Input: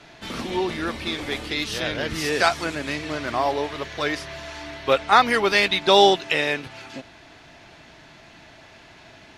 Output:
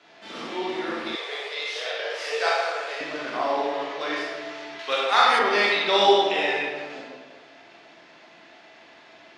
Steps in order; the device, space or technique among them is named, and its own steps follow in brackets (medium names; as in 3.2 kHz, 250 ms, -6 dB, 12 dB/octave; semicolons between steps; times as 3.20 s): supermarket ceiling speaker (band-pass 310–6100 Hz; reverberation RT60 1.6 s, pre-delay 23 ms, DRR -5.5 dB); 1.15–3.01 s: Chebyshev high-pass 420 Hz, order 5; 4.79–5.39 s: tilt EQ +3 dB/octave; trim -8 dB